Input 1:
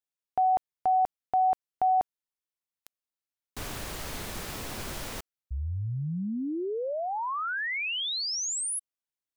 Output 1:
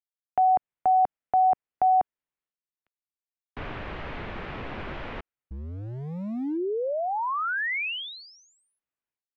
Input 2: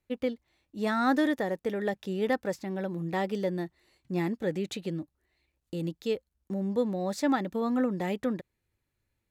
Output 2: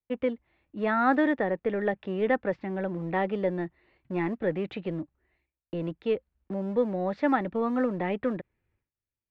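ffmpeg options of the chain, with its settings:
ffmpeg -i in.wav -filter_complex "[0:a]agate=range=-20dB:threshold=-57dB:ratio=3:release=448:detection=peak,lowpass=frequency=2700:width=0.5412,lowpass=frequency=2700:width=1.3066,acrossover=split=280[link_01][link_02];[link_01]asoftclip=type=hard:threshold=-38.5dB[link_03];[link_03][link_02]amix=inputs=2:normalize=0,volume=3.5dB" out.wav

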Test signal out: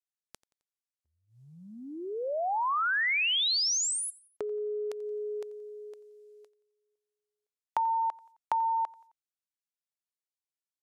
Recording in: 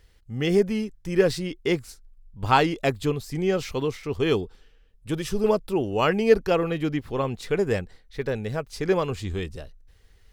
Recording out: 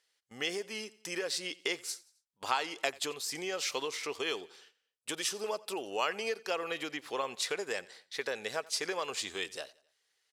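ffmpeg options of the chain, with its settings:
ffmpeg -i in.wav -filter_complex "[0:a]aemphasis=mode=production:type=75kf,acompressor=threshold=-27dB:ratio=12,highpass=600,lowpass=7400,agate=range=-16dB:threshold=-59dB:ratio=16:detection=peak,asplit=2[link_01][link_02];[link_02]aecho=0:1:88|176|264:0.0794|0.0365|0.0168[link_03];[link_01][link_03]amix=inputs=2:normalize=0,volume=1.5dB" out.wav

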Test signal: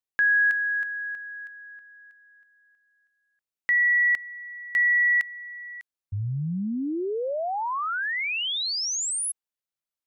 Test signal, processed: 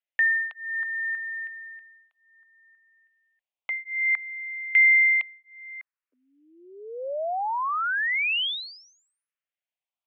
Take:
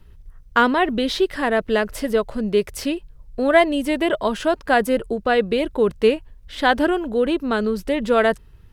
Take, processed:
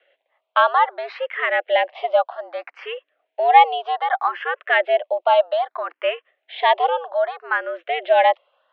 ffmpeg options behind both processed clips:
ffmpeg -i in.wav -filter_complex "[0:a]highpass=frequency=410:width_type=q:width=0.5412,highpass=frequency=410:width_type=q:width=1.307,lowpass=frequency=3100:width_type=q:width=0.5176,lowpass=frequency=3100:width_type=q:width=0.7071,lowpass=frequency=3100:width_type=q:width=1.932,afreqshift=150,asplit=2[link_01][link_02];[link_02]afreqshift=0.63[link_03];[link_01][link_03]amix=inputs=2:normalize=1,volume=5dB" out.wav

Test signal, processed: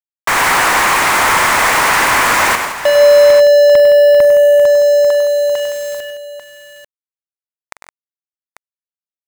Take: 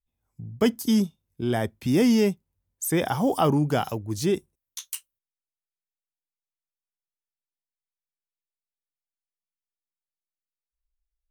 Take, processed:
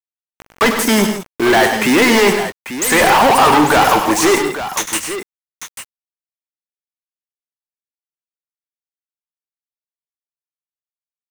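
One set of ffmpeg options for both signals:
ffmpeg -i in.wav -filter_complex "[0:a]agate=range=-33dB:threshold=-55dB:ratio=3:detection=peak,equalizer=frequency=125:width_type=o:width=1:gain=-12,equalizer=frequency=1000:width_type=o:width=1:gain=11,equalizer=frequency=2000:width_type=o:width=1:gain=10,equalizer=frequency=4000:width_type=o:width=1:gain=-10,equalizer=frequency=8000:width_type=o:width=1:gain=7,asplit=2[link_01][link_02];[link_02]highpass=frequency=720:poles=1,volume=38dB,asoftclip=type=tanh:threshold=-2dB[link_03];[link_01][link_03]amix=inputs=2:normalize=0,lowpass=frequency=4200:poles=1,volume=-6dB,aeval=exprs='val(0)*gte(abs(val(0)),0.133)':channel_layout=same,asplit=2[link_04][link_05];[link_05]aecho=0:1:44|100|119|143|165|843:0.178|0.355|0.158|0.126|0.282|0.266[link_06];[link_04][link_06]amix=inputs=2:normalize=0,volume=-2.5dB" out.wav

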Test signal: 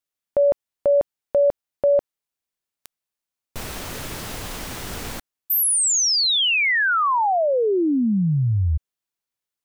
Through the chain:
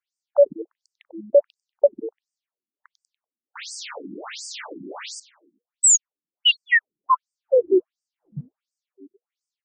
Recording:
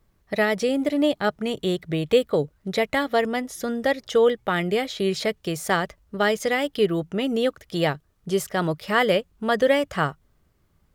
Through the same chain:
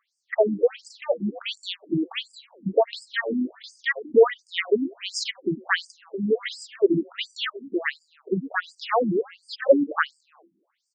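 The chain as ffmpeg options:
ffmpeg -i in.wav -filter_complex "[0:a]asplit=5[link_01][link_02][link_03][link_04][link_05];[link_02]adelay=96,afreqshift=-120,volume=-18.5dB[link_06];[link_03]adelay=192,afreqshift=-240,volume=-24dB[link_07];[link_04]adelay=288,afreqshift=-360,volume=-29.5dB[link_08];[link_05]adelay=384,afreqshift=-480,volume=-35dB[link_09];[link_01][link_06][link_07][link_08][link_09]amix=inputs=5:normalize=0,afftfilt=real='re*between(b*sr/1024,240*pow(6600/240,0.5+0.5*sin(2*PI*1.4*pts/sr))/1.41,240*pow(6600/240,0.5+0.5*sin(2*PI*1.4*pts/sr))*1.41)':imag='im*between(b*sr/1024,240*pow(6600/240,0.5+0.5*sin(2*PI*1.4*pts/sr))/1.41,240*pow(6600/240,0.5+0.5*sin(2*PI*1.4*pts/sr))*1.41)':win_size=1024:overlap=0.75,volume=6dB" out.wav

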